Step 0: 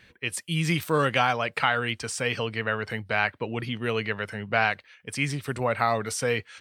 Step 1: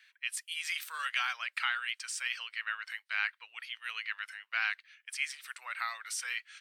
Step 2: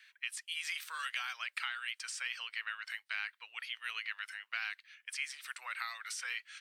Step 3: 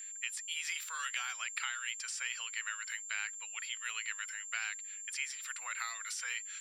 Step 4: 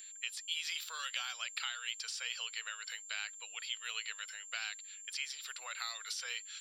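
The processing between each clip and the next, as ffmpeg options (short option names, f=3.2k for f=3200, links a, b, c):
-af "highpass=f=1.4k:w=0.5412,highpass=f=1.4k:w=1.3066,volume=-5dB"
-filter_complex "[0:a]acrossover=split=1000|2800|7800[a][b][c][d];[a]acompressor=threshold=-56dB:ratio=4[e];[b]acompressor=threshold=-42dB:ratio=4[f];[c]acompressor=threshold=-44dB:ratio=4[g];[d]acompressor=threshold=-55dB:ratio=4[h];[e][f][g][h]amix=inputs=4:normalize=0,volume=1.5dB"
-af "aeval=exprs='val(0)+0.00708*sin(2*PI*7300*n/s)':c=same"
-af "equalizer=f=500:t=o:w=1:g=7,equalizer=f=1k:t=o:w=1:g=-5,equalizer=f=2k:t=o:w=1:g=-9,equalizer=f=4k:t=o:w=1:g=9,equalizer=f=8k:t=o:w=1:g=-10,volume=2.5dB"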